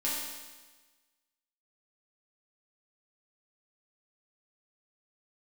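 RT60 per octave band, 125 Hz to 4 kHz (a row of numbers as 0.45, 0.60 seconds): 1.3, 1.3, 1.3, 1.3, 1.3, 1.3 seconds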